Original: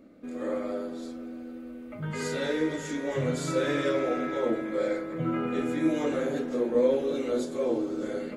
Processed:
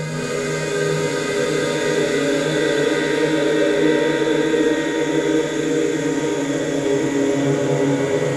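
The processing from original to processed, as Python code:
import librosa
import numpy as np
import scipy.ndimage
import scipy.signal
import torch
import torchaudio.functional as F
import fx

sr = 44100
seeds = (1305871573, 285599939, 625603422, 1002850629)

y = fx.paulstretch(x, sr, seeds[0], factor=8.4, window_s=1.0, from_s=2.12)
y = fx.rev_gated(y, sr, seeds[1], gate_ms=270, shape='rising', drr_db=-4.0)
y = y * librosa.db_to_amplitude(6.0)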